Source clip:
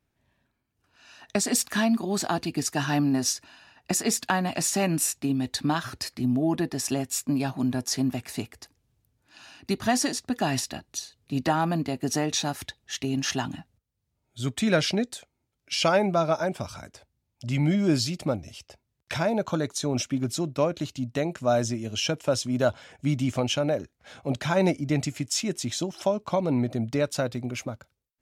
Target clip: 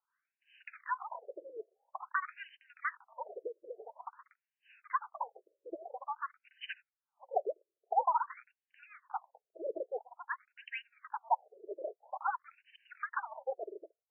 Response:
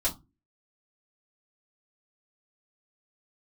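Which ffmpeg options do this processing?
-af "asetrate=88200,aresample=44100,afreqshift=-340,afftfilt=real='re*between(b*sr/1024,450*pow(2200/450,0.5+0.5*sin(2*PI*0.49*pts/sr))/1.41,450*pow(2200/450,0.5+0.5*sin(2*PI*0.49*pts/sr))*1.41)':imag='im*between(b*sr/1024,450*pow(2200/450,0.5+0.5*sin(2*PI*0.49*pts/sr))/1.41,450*pow(2200/450,0.5+0.5*sin(2*PI*0.49*pts/sr))*1.41)':win_size=1024:overlap=0.75,volume=-3.5dB"

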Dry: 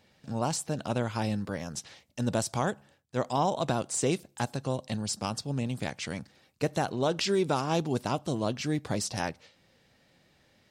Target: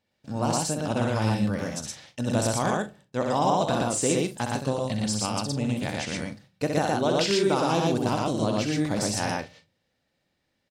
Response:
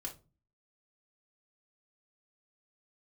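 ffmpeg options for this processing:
-filter_complex "[0:a]agate=range=-16dB:threshold=-52dB:ratio=16:detection=peak,aecho=1:1:64.14|116.6|154.5:0.562|0.891|0.251,asplit=2[link_01][link_02];[1:a]atrim=start_sample=2205[link_03];[link_02][link_03]afir=irnorm=-1:irlink=0,volume=-8.5dB[link_04];[link_01][link_04]amix=inputs=2:normalize=0"

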